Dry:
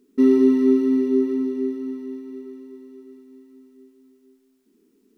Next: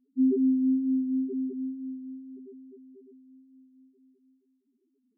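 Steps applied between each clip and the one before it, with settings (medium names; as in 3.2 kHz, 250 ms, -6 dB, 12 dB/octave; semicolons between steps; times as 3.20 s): loudest bins only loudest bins 1; trim -2.5 dB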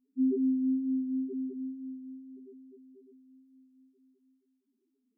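hum notches 60/120/180/240/300/360/420 Hz; trim -4 dB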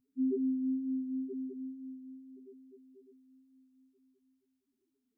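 resonant low shelf 160 Hz +8 dB, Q 3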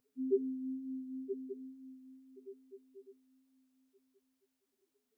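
resonant low shelf 370 Hz -7.5 dB, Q 3; trim +5.5 dB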